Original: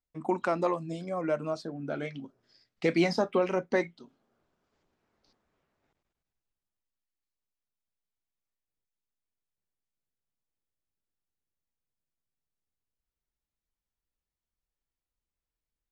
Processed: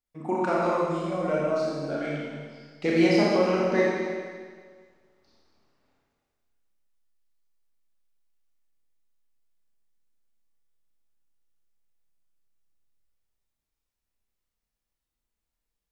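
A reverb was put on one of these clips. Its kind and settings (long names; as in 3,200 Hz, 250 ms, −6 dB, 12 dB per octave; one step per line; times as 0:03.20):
four-comb reverb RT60 1.7 s, combs from 27 ms, DRR −5.5 dB
level −1.5 dB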